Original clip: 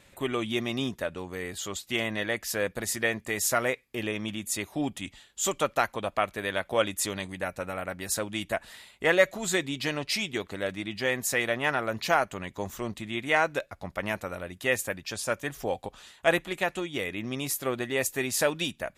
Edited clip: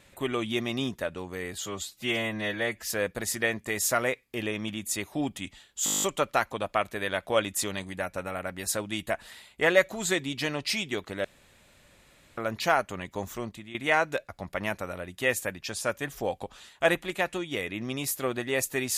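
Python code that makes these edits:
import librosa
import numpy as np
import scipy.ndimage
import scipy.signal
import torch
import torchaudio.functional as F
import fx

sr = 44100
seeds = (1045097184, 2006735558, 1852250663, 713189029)

y = fx.edit(x, sr, fx.stretch_span(start_s=1.66, length_s=0.79, factor=1.5),
    fx.stutter(start_s=5.45, slice_s=0.02, count=10),
    fx.room_tone_fill(start_s=10.67, length_s=1.13),
    fx.fade_out_to(start_s=12.76, length_s=0.41, floor_db=-12.5), tone=tone)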